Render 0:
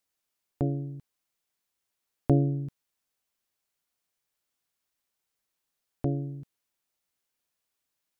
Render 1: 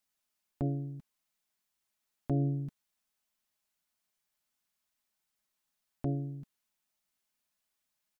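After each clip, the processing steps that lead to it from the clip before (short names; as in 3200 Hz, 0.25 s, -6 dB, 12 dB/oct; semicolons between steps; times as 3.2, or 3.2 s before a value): bell 450 Hz -10.5 dB 0.25 oct; comb 4.7 ms, depth 42%; limiter -20.5 dBFS, peak gain reduction 9 dB; gain -1.5 dB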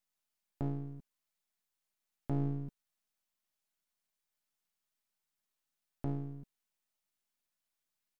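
half-wave gain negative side -12 dB; gain -1.5 dB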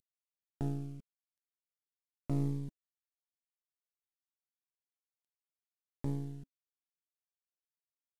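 CVSD 64 kbps; cascading phaser falling 0.86 Hz; gain +1 dB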